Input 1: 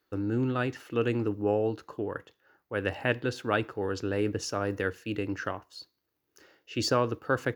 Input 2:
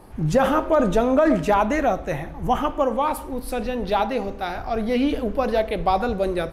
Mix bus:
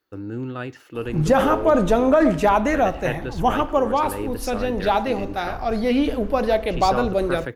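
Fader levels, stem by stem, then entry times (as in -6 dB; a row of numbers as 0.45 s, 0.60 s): -1.5 dB, +1.5 dB; 0.00 s, 0.95 s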